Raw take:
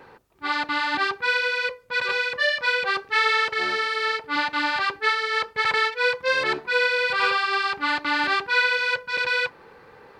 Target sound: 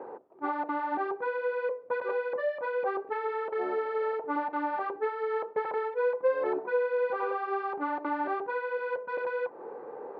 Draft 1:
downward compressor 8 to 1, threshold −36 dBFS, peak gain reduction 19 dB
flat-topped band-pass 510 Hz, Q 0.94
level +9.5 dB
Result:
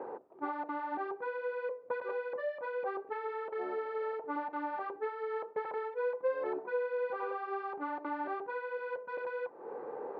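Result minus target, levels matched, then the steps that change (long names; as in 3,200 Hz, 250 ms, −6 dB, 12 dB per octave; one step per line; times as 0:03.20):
downward compressor: peak gain reduction +6 dB
change: downward compressor 8 to 1, threshold −29 dBFS, peak gain reduction 13 dB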